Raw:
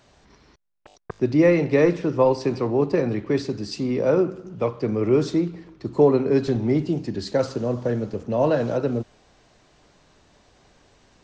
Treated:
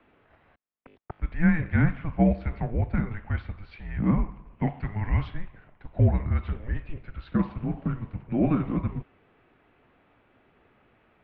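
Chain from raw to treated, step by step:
high-pass filter 280 Hz
single-sideband voice off tune −330 Hz 360–3,000 Hz
0:04.67–0:05.28: high-shelf EQ 2,000 Hz +9.5 dB
level −1.5 dB

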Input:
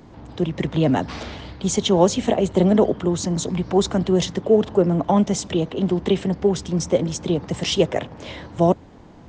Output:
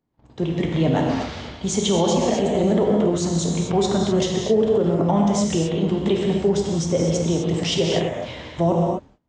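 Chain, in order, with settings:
noise gate −36 dBFS, range −31 dB
reverb whose tail is shaped and stops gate 280 ms flat, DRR −0.5 dB
boost into a limiter +7 dB
level −9 dB

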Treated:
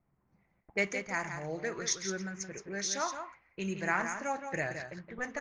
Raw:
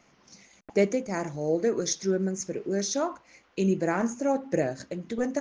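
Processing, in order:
graphic EQ with 10 bands 250 Hz −12 dB, 500 Hz −9 dB, 1,000 Hz +3 dB, 2,000 Hz +8 dB
low-pass that shuts in the quiet parts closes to 330 Hz, open at −28.5 dBFS
single-tap delay 170 ms −8 dB
level −3 dB

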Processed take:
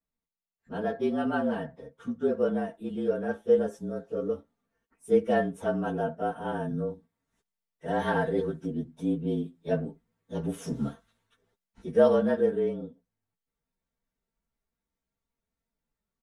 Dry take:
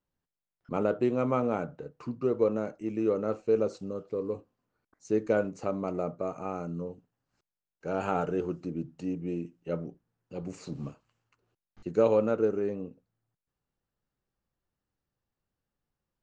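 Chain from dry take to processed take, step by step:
partials spread apart or drawn together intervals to 111%
speech leveller 2 s
comb filter 4.4 ms, depth 59%

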